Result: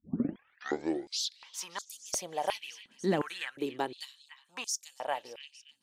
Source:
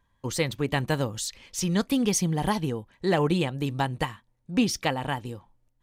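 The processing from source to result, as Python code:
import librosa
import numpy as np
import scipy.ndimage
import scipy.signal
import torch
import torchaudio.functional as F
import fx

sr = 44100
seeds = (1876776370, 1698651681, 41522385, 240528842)

y = fx.tape_start_head(x, sr, length_s=1.52)
y = fx.echo_stepped(y, sr, ms=286, hz=2600.0, octaves=0.7, feedback_pct=70, wet_db=-11.0)
y = fx.filter_held_highpass(y, sr, hz=2.8, low_hz=230.0, high_hz=6700.0)
y = y * 10.0 ** (-8.0 / 20.0)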